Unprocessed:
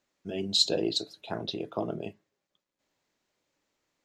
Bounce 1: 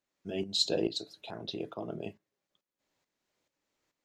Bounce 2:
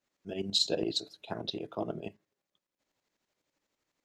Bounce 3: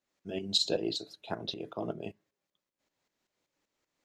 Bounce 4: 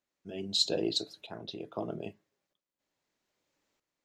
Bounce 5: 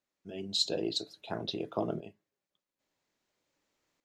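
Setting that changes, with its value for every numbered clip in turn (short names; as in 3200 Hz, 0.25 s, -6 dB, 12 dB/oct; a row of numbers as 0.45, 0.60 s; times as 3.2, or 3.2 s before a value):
tremolo, rate: 2.3, 12, 5.2, 0.79, 0.5 Hz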